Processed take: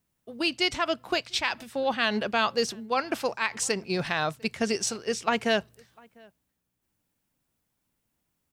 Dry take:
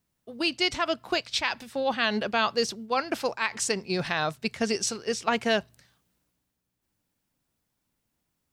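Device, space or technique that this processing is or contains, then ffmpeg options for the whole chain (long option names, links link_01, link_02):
exciter from parts: -filter_complex "[0:a]asplit=2[link_01][link_02];[link_02]adelay=699.7,volume=-27dB,highshelf=frequency=4000:gain=-15.7[link_03];[link_01][link_03]amix=inputs=2:normalize=0,asplit=2[link_04][link_05];[link_05]highpass=2200,asoftclip=type=tanh:threshold=-25.5dB,highpass=frequency=3500:width=0.5412,highpass=frequency=3500:width=1.3066,volume=-13dB[link_06];[link_04][link_06]amix=inputs=2:normalize=0"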